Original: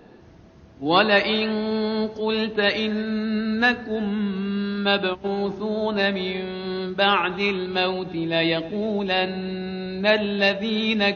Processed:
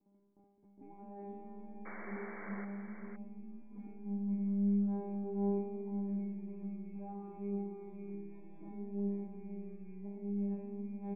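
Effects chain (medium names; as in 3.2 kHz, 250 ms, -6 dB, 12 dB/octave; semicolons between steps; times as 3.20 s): rattle on loud lows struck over -38 dBFS, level -10 dBFS; peaking EQ 1.7 kHz +12.5 dB 0.21 oct; hum notches 50/100/150 Hz; comb 0.9 ms, depth 42%; waveshaping leveller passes 5; peak limiter -9 dBFS, peak gain reduction 7.5 dB; compressor with a negative ratio -21 dBFS, ratio -1; cascade formant filter u; feedback comb 200 Hz, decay 1.1 s, mix 100%; painted sound noise, 1.85–2.65 s, 290–2300 Hz -54 dBFS; delay 515 ms -8 dB; trim +5 dB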